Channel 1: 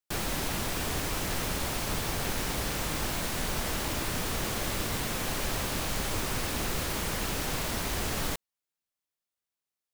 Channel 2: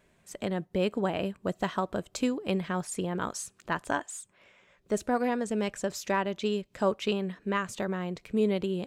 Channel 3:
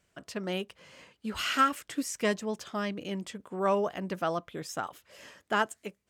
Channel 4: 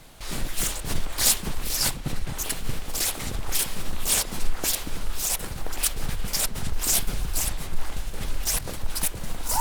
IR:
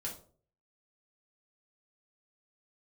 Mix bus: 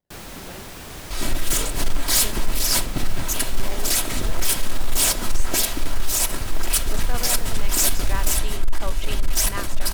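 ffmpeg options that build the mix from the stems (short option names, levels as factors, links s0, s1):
-filter_complex "[0:a]volume=0.531[s0];[1:a]equalizer=f=260:w=0.47:g=-13.5,adelay=2000,volume=1.12[s1];[2:a]lowpass=1300,acrusher=samples=33:mix=1:aa=0.000001:lfo=1:lforange=33:lforate=0.8,volume=0.299,asplit=3[s2][s3][s4];[s3]volume=0.376[s5];[3:a]aecho=1:1:3.1:0.46,asoftclip=type=hard:threshold=0.126,adelay=900,volume=1.41,asplit=2[s6][s7];[s7]volume=0.299[s8];[s4]apad=whole_len=479336[s9];[s1][s9]sidechaincompress=threshold=0.00178:ratio=8:attack=16:release=513[s10];[4:a]atrim=start_sample=2205[s11];[s5][s8]amix=inputs=2:normalize=0[s12];[s12][s11]afir=irnorm=-1:irlink=0[s13];[s0][s10][s2][s6][s13]amix=inputs=5:normalize=0"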